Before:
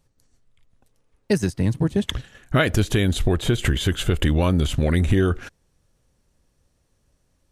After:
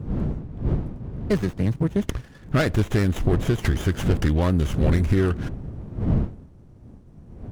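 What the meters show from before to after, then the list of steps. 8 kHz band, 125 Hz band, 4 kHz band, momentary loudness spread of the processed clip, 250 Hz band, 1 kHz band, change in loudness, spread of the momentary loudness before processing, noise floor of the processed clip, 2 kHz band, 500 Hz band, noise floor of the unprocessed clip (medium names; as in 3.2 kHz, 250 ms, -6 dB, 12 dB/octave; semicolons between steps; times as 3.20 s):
-7.0 dB, 0.0 dB, -9.0 dB, 12 LU, -0.5 dB, -1.5 dB, -2.0 dB, 5 LU, -48 dBFS, -4.0 dB, -1.5 dB, -68 dBFS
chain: wind noise 160 Hz -27 dBFS; sliding maximum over 9 samples; trim -1.5 dB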